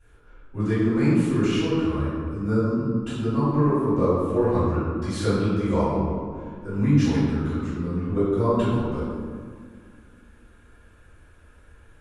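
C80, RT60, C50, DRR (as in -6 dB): 0.0 dB, 2.0 s, -2.5 dB, -16.5 dB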